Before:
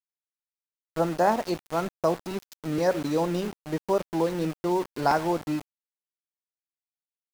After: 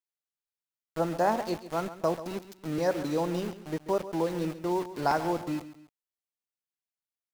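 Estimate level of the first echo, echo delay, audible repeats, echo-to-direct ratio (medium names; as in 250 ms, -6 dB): -14.0 dB, 137 ms, 2, -13.5 dB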